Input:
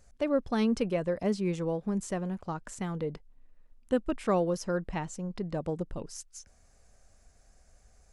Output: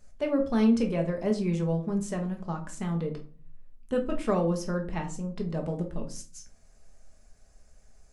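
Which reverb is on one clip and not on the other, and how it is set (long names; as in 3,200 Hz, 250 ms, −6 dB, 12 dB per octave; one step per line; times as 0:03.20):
rectangular room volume 250 cubic metres, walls furnished, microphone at 1.4 metres
level −1.5 dB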